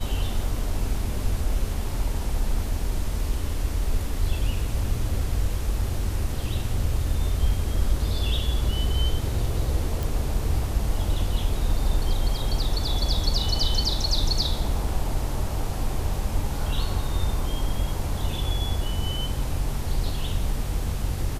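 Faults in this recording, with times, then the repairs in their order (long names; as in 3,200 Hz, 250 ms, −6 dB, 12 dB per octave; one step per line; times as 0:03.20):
0:10.03: click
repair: click removal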